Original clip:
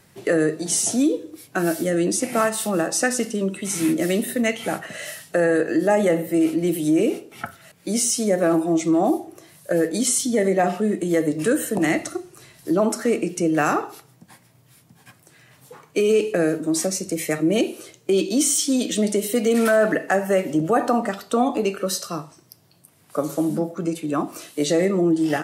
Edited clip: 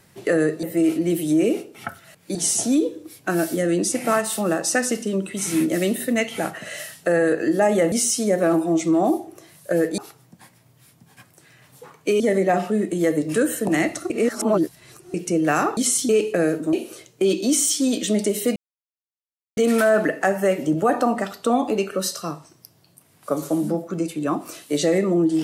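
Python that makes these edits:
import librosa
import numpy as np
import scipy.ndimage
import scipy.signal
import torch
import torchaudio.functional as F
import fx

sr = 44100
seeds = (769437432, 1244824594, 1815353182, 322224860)

y = fx.edit(x, sr, fx.move(start_s=6.2, length_s=1.72, to_s=0.63),
    fx.swap(start_s=9.98, length_s=0.32, other_s=13.87, other_length_s=2.22),
    fx.reverse_span(start_s=12.2, length_s=1.04),
    fx.cut(start_s=16.73, length_s=0.88),
    fx.insert_silence(at_s=19.44, length_s=1.01), tone=tone)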